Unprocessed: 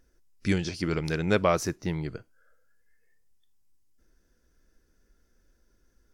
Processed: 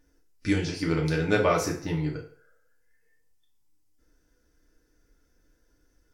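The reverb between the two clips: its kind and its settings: FDN reverb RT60 0.52 s, low-frequency decay 0.75×, high-frequency decay 0.8×, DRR -2 dB; gain -2.5 dB

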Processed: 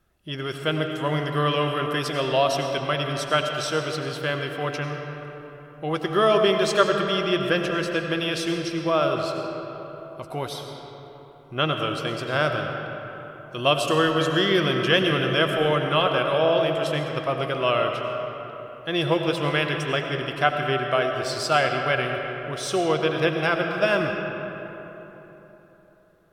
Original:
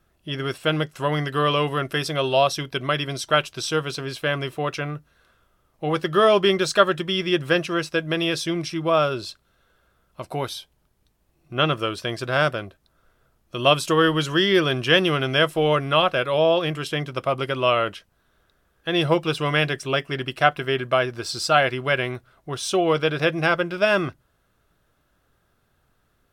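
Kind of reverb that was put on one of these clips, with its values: digital reverb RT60 3.8 s, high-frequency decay 0.5×, pre-delay 55 ms, DRR 3.5 dB; gain -3 dB

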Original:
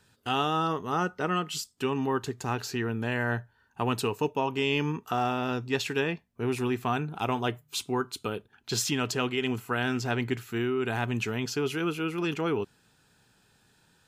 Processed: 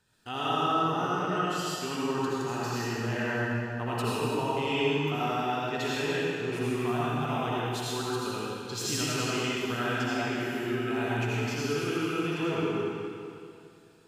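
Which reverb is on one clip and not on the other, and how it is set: digital reverb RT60 2.5 s, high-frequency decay 0.95×, pre-delay 40 ms, DRR -8 dB; gain -8.5 dB

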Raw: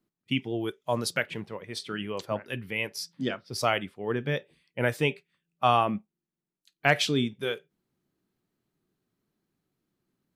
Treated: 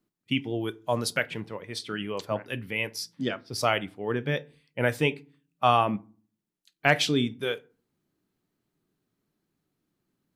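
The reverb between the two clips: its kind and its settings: FDN reverb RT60 0.41 s, low-frequency decay 1.45×, high-frequency decay 0.6×, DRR 17 dB; gain +1 dB

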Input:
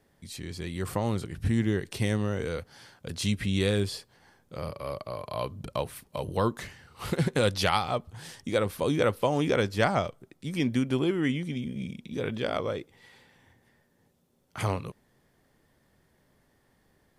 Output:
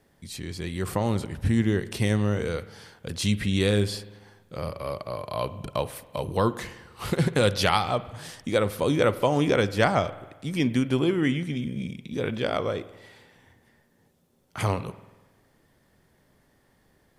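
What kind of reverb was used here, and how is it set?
spring tank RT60 1.2 s, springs 48 ms, chirp 75 ms, DRR 15 dB; gain +3 dB

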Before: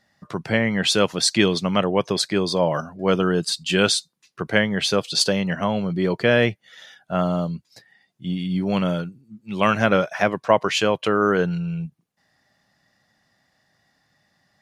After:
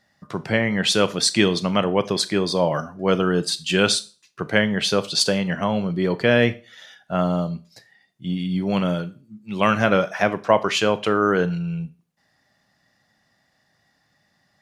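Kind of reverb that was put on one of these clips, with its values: Schroeder reverb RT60 0.34 s, combs from 26 ms, DRR 14 dB

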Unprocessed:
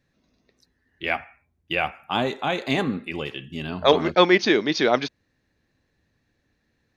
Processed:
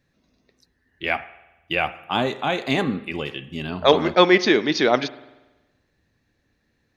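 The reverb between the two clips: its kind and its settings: spring tank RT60 1.1 s, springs 47 ms, chirp 60 ms, DRR 17 dB; gain +1.5 dB

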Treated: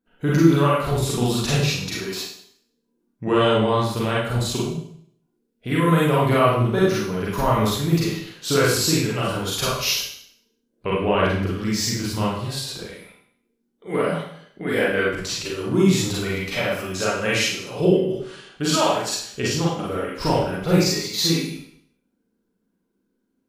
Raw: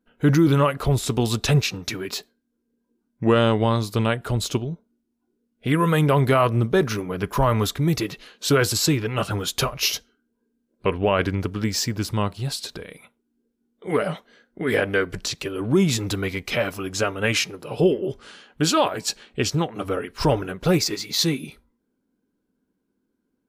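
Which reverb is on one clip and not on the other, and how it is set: Schroeder reverb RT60 0.63 s, combs from 33 ms, DRR -6 dB; gain -5.5 dB

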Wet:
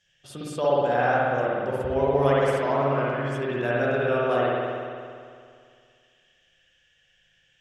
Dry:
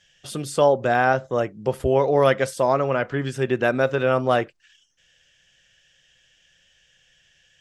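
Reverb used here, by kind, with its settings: spring tank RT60 2.2 s, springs 57 ms, chirp 70 ms, DRR -6.5 dB; gain -10 dB

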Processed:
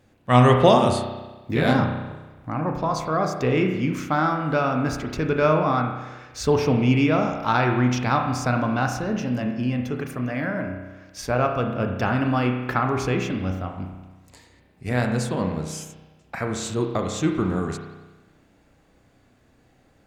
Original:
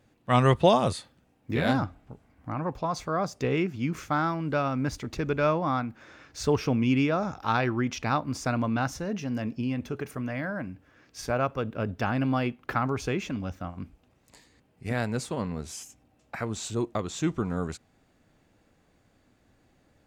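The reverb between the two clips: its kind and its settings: spring tank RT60 1.2 s, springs 32 ms, chirp 60 ms, DRR 3.5 dB; gain +4 dB

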